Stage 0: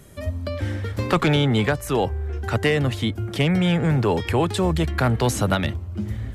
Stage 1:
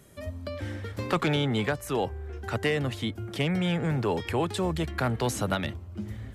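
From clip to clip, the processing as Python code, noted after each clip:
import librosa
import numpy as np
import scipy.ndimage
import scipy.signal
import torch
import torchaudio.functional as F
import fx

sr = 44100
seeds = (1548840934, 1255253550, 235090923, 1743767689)

y = fx.low_shelf(x, sr, hz=83.0, db=-8.5)
y = F.gain(torch.from_numpy(y), -6.0).numpy()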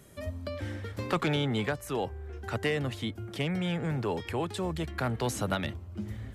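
y = fx.rider(x, sr, range_db=4, speed_s=2.0)
y = F.gain(torch.from_numpy(y), -3.5).numpy()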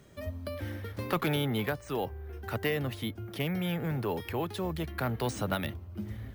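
y = np.repeat(scipy.signal.resample_poly(x, 1, 3), 3)[:len(x)]
y = F.gain(torch.from_numpy(y), -1.0).numpy()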